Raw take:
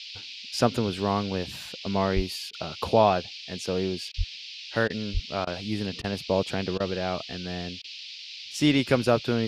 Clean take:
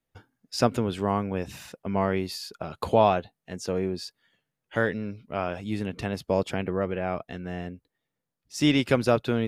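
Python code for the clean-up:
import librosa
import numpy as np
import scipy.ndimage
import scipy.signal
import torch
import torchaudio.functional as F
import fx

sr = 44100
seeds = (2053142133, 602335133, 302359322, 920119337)

y = fx.highpass(x, sr, hz=140.0, slope=24, at=(2.15, 2.27), fade=0.02)
y = fx.highpass(y, sr, hz=140.0, slope=24, at=(4.17, 4.29), fade=0.02)
y = fx.highpass(y, sr, hz=140.0, slope=24, at=(5.13, 5.25), fade=0.02)
y = fx.fix_interpolate(y, sr, at_s=(2.51, 4.12, 4.88, 5.45, 6.02, 6.78, 7.82), length_ms=19.0)
y = fx.noise_reduce(y, sr, print_start_s=7.81, print_end_s=8.31, reduce_db=30.0)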